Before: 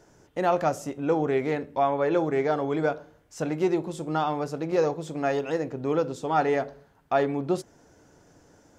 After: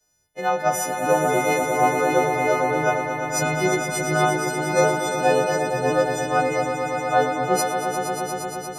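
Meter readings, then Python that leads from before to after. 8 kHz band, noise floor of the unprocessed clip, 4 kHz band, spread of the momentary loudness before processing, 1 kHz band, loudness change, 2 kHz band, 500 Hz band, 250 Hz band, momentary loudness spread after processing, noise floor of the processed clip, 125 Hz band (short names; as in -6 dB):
+19.0 dB, -60 dBFS, +10.5 dB, 6 LU, +8.0 dB, +5.0 dB, +12.0 dB, +4.5 dB, +1.5 dB, 5 LU, -35 dBFS, +5.0 dB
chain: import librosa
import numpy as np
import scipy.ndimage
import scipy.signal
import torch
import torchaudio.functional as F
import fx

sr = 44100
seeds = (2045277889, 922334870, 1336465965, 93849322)

y = fx.freq_snap(x, sr, grid_st=3)
y = y + 0.32 * np.pad(y, (int(1.5 * sr / 1000.0), 0))[:len(y)]
y = fx.rider(y, sr, range_db=3, speed_s=0.5)
y = fx.echo_swell(y, sr, ms=117, loudest=5, wet_db=-6.0)
y = fx.band_widen(y, sr, depth_pct=70)
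y = y * librosa.db_to_amplitude(2.0)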